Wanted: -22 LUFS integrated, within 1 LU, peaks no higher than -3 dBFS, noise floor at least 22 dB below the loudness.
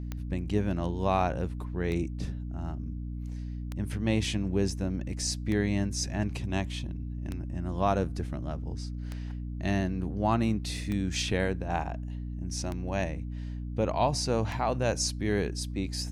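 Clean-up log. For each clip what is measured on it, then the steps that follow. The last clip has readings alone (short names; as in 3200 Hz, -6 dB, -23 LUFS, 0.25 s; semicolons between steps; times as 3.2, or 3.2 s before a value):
clicks 9; hum 60 Hz; harmonics up to 300 Hz; hum level -33 dBFS; loudness -31.5 LUFS; peak -13.0 dBFS; loudness target -22.0 LUFS
-> de-click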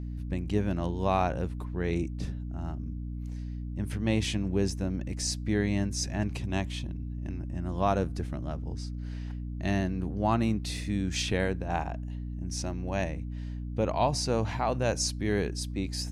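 clicks 0; hum 60 Hz; harmonics up to 300 Hz; hum level -33 dBFS
-> de-hum 60 Hz, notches 5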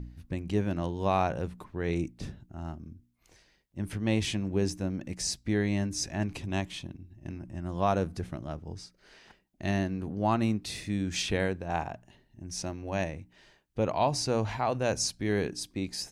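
hum none; loudness -31.5 LUFS; peak -14.0 dBFS; loudness target -22.0 LUFS
-> gain +9.5 dB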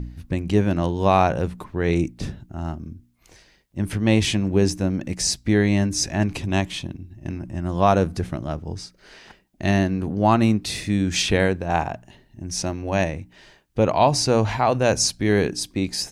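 loudness -22.0 LUFS; peak -4.5 dBFS; noise floor -58 dBFS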